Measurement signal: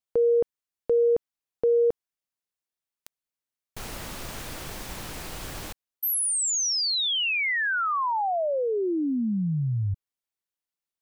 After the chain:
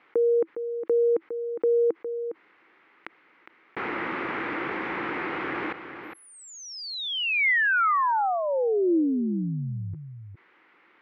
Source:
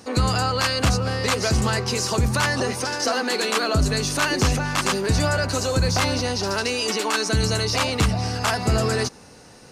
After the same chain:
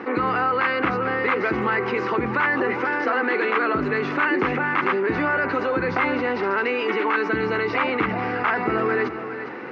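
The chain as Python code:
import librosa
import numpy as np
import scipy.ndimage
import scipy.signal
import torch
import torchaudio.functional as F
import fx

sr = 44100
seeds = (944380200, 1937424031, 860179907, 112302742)

y = fx.cabinet(x, sr, low_hz=310.0, low_slope=12, high_hz=2200.0, hz=(330.0, 640.0, 1300.0, 2100.0), db=(8, -9, 3, 6))
y = y + 10.0 ** (-19.5 / 20.0) * np.pad(y, (int(409 * sr / 1000.0), 0))[:len(y)]
y = fx.env_flatten(y, sr, amount_pct=50)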